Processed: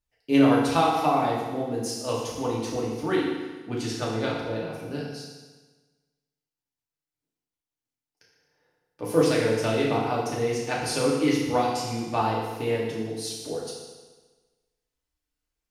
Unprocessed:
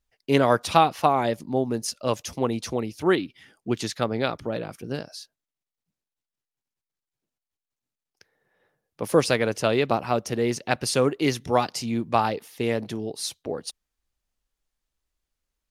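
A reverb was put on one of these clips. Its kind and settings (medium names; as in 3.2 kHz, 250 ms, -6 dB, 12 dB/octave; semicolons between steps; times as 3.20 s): FDN reverb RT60 1.3 s, low-frequency decay 1×, high-frequency decay 0.95×, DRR -5.5 dB; trim -8.5 dB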